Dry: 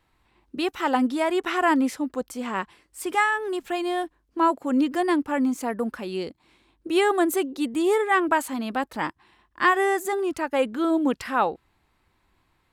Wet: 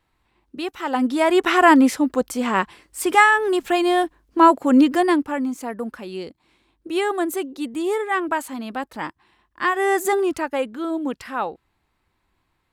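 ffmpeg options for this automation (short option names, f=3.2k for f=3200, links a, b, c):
-af "volume=16.5dB,afade=t=in:st=0.89:d=0.52:silence=0.316228,afade=t=out:st=4.78:d=0.64:silence=0.334965,afade=t=in:st=9.75:d=0.32:silence=0.375837,afade=t=out:st=10.07:d=0.6:silence=0.316228"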